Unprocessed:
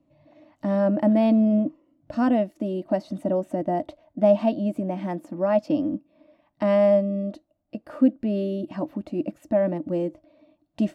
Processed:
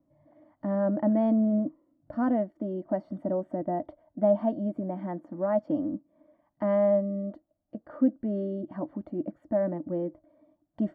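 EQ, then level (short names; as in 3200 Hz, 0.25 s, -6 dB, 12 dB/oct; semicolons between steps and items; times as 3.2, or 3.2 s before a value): polynomial smoothing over 41 samples; -5.0 dB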